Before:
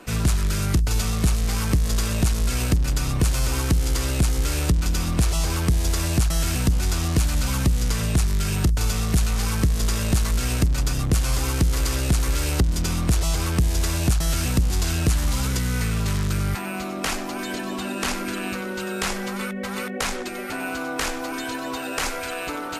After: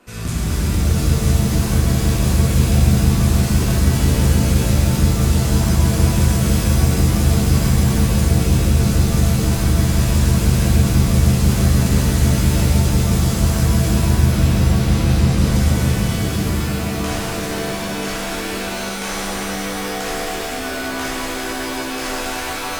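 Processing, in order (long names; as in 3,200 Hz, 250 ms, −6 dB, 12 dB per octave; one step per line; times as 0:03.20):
0:13.89–0:15.37: linear delta modulator 32 kbit/s, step −32.5 dBFS
reverb with rising layers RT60 3.6 s, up +7 semitones, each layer −2 dB, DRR −8 dB
level −8 dB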